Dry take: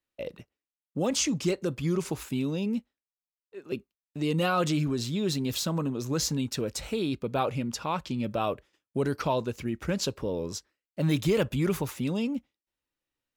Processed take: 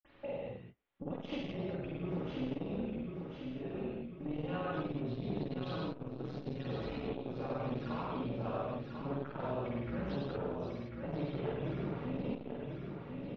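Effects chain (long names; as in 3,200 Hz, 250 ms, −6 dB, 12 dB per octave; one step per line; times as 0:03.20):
low-pass filter 1,700 Hz 6 dB per octave
upward compression, threshold −36 dBFS
in parallel at +1.5 dB: brickwall limiter −24 dBFS, peak gain reduction 8 dB
on the sum: downward compressor, threshold −27 dBFS, peak gain reduction 10 dB
amplitude modulation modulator 280 Hz, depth 40%
double-tracking delay 16 ms −12.5 dB
repeating echo 1,044 ms, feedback 49%, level −6.5 dB
convolution reverb, pre-delay 47 ms
saturating transformer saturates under 340 Hz
level +5 dB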